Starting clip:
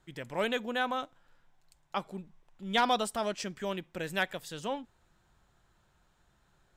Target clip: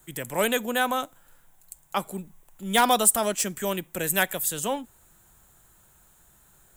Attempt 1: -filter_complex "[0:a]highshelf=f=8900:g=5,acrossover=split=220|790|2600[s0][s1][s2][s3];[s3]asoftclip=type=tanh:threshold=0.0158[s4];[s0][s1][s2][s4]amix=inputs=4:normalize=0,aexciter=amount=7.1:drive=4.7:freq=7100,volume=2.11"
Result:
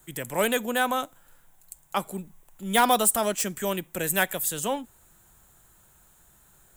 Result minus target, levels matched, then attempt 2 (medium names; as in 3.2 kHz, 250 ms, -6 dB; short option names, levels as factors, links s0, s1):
saturation: distortion +8 dB
-filter_complex "[0:a]highshelf=f=8900:g=5,acrossover=split=220|790|2600[s0][s1][s2][s3];[s3]asoftclip=type=tanh:threshold=0.0376[s4];[s0][s1][s2][s4]amix=inputs=4:normalize=0,aexciter=amount=7.1:drive=4.7:freq=7100,volume=2.11"